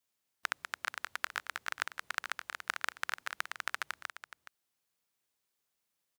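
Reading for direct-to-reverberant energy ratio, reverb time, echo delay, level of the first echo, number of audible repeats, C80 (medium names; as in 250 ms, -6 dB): no reverb, no reverb, 421 ms, -12.5 dB, 1, no reverb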